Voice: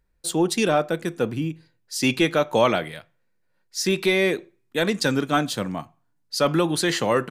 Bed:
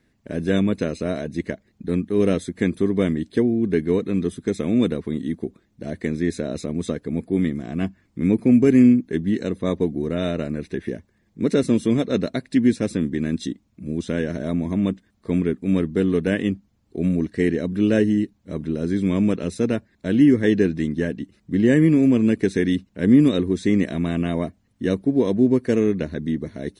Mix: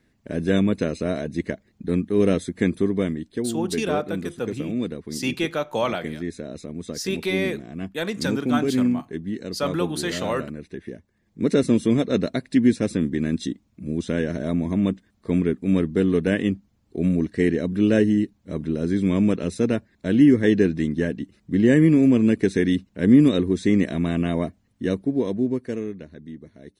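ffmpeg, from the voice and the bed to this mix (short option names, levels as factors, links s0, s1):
-filter_complex "[0:a]adelay=3200,volume=0.562[s0];[1:a]volume=2.37,afade=t=out:st=2.74:d=0.54:silence=0.421697,afade=t=in:st=11.03:d=0.47:silence=0.421697,afade=t=out:st=24.5:d=1.52:silence=0.199526[s1];[s0][s1]amix=inputs=2:normalize=0"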